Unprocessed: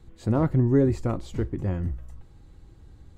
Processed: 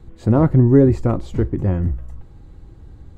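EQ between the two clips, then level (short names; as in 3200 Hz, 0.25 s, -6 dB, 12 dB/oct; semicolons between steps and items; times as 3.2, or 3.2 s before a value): high shelf 2000 Hz -8.5 dB; +8.5 dB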